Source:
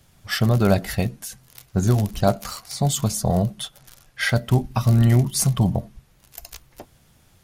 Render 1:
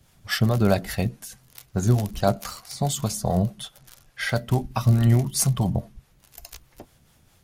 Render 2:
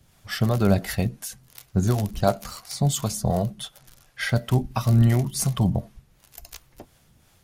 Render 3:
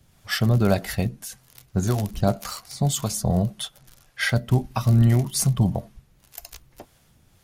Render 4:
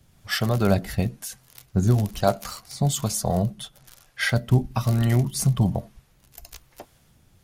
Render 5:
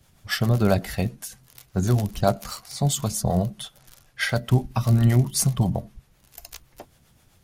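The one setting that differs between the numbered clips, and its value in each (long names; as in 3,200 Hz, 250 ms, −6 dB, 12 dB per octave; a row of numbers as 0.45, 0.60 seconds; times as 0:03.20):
two-band tremolo in antiphase, speed: 4.7, 2.8, 1.8, 1.1, 7.7 Hertz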